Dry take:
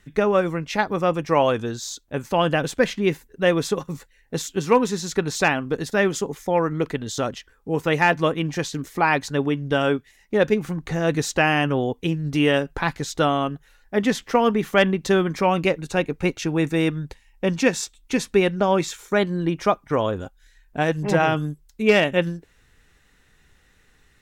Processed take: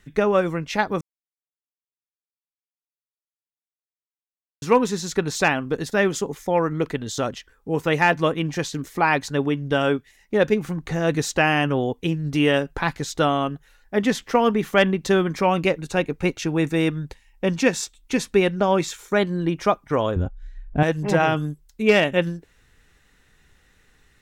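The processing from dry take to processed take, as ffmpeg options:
-filter_complex "[0:a]asettb=1/sr,asplit=3[a][b][c];[a]atrim=end=20.164[d];[b]atrim=start=20.16:end=20.83,asetpts=PTS-STARTPTS,afade=t=in:d=0.004:c=qsin,afade=t=out:st=0.666:d=0.004:c=qsin,aemphasis=mode=reproduction:type=riaa[e];[c]atrim=start=20.826[f];[d][e]acrossfade=d=0.004:c1=hsin:c2=qsin[g];[g][f]acrossfade=d=0.004:c1=qsin:c2=hsin,asplit=3[h][i][j];[h]atrim=end=1.01,asetpts=PTS-STARTPTS,afade=t=out:st=1.006:d=0.004:c=hsin[k];[i]atrim=start=1.01:end=4.62,asetpts=PTS-STARTPTS,volume=0[l];[j]atrim=start=4.62,asetpts=PTS-STARTPTS,afade=t=in:d=0.004:c=hsin[m];[k][l][m]concat=n=3:v=0:a=1"

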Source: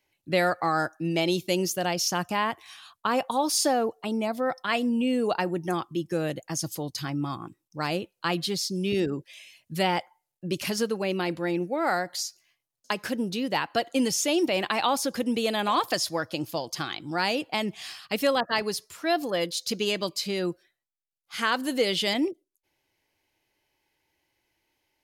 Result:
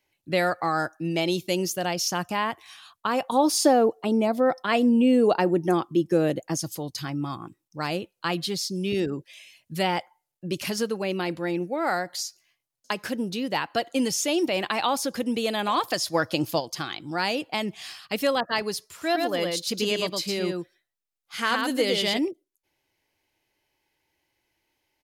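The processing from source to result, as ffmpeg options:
-filter_complex "[0:a]asettb=1/sr,asplit=3[a][b][c];[a]atrim=end=3.324[d];[b]atrim=start=3.32:end=6.57,asetpts=PTS-STARTPTS,afade=t=in:d=0.004:c=qsin,afade=t=out:st=3.246:d=0.004:c=qsin,equalizer=f=360:w=0.57:g=7.5[e];[c]atrim=start=6.566[f];[d][e]acrossfade=d=0.004:c1=hsin:c2=qsin[g];[g][f]acrossfade=d=0.004:c1=qsin:c2=hsin,asplit=3[h][i][j];[h]afade=t=out:st=16.13:d=0.02[k];[i]acontrast=39,afade=t=in:st=16.13:d=0.02,afade=t=out:st=16.59:d=0.02[l];[j]afade=t=in:st=16.59:d=0.02[m];[k][l][m]amix=inputs=3:normalize=0,asplit=3[n][o][p];[n]afade=t=out:st=18.96:d=0.02[q];[o]aecho=1:1:111:0.668,afade=t=in:st=18.96:d=0.02,afade=t=out:st=22.17:d=0.02[r];[p]afade=t=in:st=22.17:d=0.02[s];[q][r][s]amix=inputs=3:normalize=0"

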